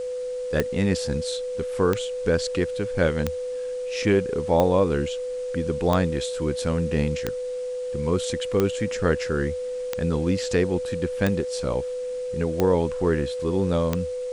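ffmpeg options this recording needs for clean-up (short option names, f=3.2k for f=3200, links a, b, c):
-af "adeclick=t=4,bandreject=f=500:w=30,afwtdn=0.0035"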